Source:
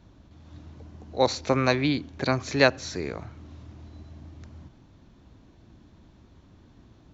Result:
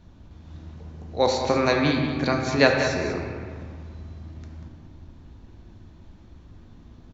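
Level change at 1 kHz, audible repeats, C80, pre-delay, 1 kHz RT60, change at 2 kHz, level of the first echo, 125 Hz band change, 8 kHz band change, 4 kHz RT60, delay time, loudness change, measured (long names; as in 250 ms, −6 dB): +3.0 dB, 1, 3.5 dB, 3 ms, 1.9 s, +3.0 dB, −9.5 dB, +2.0 dB, can't be measured, 1.1 s, 190 ms, +2.5 dB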